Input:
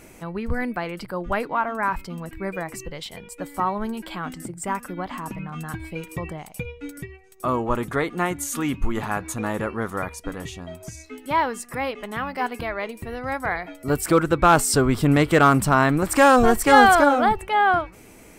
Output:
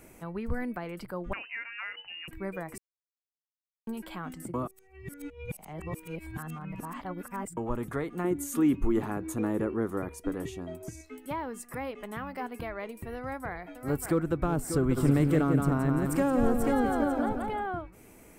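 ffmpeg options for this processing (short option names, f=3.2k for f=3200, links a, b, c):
-filter_complex "[0:a]asettb=1/sr,asplit=3[a][b][c];[a]atrim=end=1.334[d];[b]atrim=start=1.33:end=2.28,asetpts=PTS-STARTPTS,afade=t=in:d=0.004:c=qsin,afade=t=out:st=0.946:d=0.004:c=qsin,lowpass=f=2.6k:t=q:w=0.5098,lowpass=f=2.6k:t=q:w=0.6013,lowpass=f=2.6k:t=q:w=0.9,lowpass=f=2.6k:t=q:w=2.563,afreqshift=-3000[e];[c]atrim=start=2.276[f];[d][e]acrossfade=d=0.004:c1=hsin:c2=qsin[g];[g][f]acrossfade=d=0.004:c1=qsin:c2=hsin,asettb=1/sr,asplit=3[h][i][j];[h]atrim=end=8.244[k];[i]atrim=start=8.24:end=11.01,asetpts=PTS-STARTPTS,afade=t=in:d=0.004:c=qsin,afade=t=out:st=2.766:d=0.004:c=qsin,equalizer=f=340:w=1.5:g=10.5[l];[j]atrim=start=11.006[m];[k][l]acrossfade=d=0.004:c1=hsin:c2=qsin[n];[n][m]acrossfade=d=0.004:c1=qsin:c2=hsin,asplit=2[o][p];[p]afade=t=in:st=13.16:d=0.01,afade=t=out:st=14.34:d=0.01,aecho=0:1:590|1180|1770|2360|2950|3540:0.375837|0.187919|0.0939594|0.0469797|0.0234898|0.0117449[q];[o][q]amix=inputs=2:normalize=0,asplit=3[r][s][t];[r]afade=t=out:st=14.96:d=0.02[u];[s]aecho=1:1:172|344|516|688:0.562|0.186|0.0612|0.0202,afade=t=in:st=14.96:d=0.02,afade=t=out:st=17.65:d=0.02[v];[t]afade=t=in:st=17.65:d=0.02[w];[u][v][w]amix=inputs=3:normalize=0,asplit=5[x][y][z][aa][ab];[x]atrim=end=2.78,asetpts=PTS-STARTPTS,afade=t=out:st=2.776:d=0.004:c=hsin[ac];[y]atrim=start=2.78:end=3.87,asetpts=PTS-STARTPTS,volume=0[ad];[z]atrim=start=3.87:end=4.542,asetpts=PTS-STARTPTS,afade=t=in:d=0.004:c=hsin[ae];[aa]atrim=start=4.538:end=7.572,asetpts=PTS-STARTPTS,areverse[af];[ab]atrim=start=7.568[ag];[ac][ad][ae]concat=n=3:v=0:a=1[ah];[ah][af]acrossfade=d=0.004:c1=hsin:c2=hsin[ai];[ai][ag]acrossfade=d=0.004:c1=hsin:c2=hsin,equalizer=f=4.5k:w=0.69:g=-6,acrossover=split=440[aj][ak];[ak]acompressor=threshold=-30dB:ratio=4[al];[aj][al]amix=inputs=2:normalize=0,highshelf=f=8k:g=4,volume=-6dB"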